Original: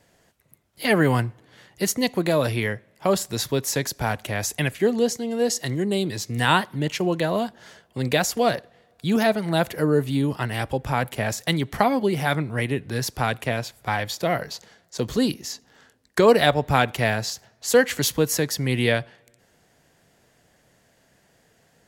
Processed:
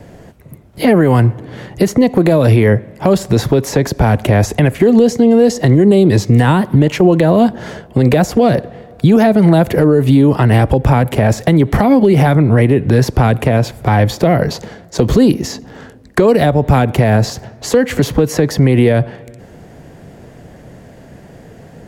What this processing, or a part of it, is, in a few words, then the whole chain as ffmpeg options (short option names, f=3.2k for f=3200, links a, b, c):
mastering chain: -filter_complex "[0:a]equalizer=f=2.3k:t=o:w=0.77:g=2.5,acrossover=split=380|1800|6400[a][b][c][d];[a]acompressor=threshold=-32dB:ratio=4[e];[b]acompressor=threshold=-28dB:ratio=4[f];[c]acompressor=threshold=-35dB:ratio=4[g];[d]acompressor=threshold=-41dB:ratio=4[h];[e][f][g][h]amix=inputs=4:normalize=0,acompressor=threshold=-29dB:ratio=2,asoftclip=type=tanh:threshold=-16dB,tiltshelf=f=970:g=9.5,asoftclip=type=hard:threshold=-15.5dB,alimiter=level_in=19.5dB:limit=-1dB:release=50:level=0:latency=1,volume=-1dB"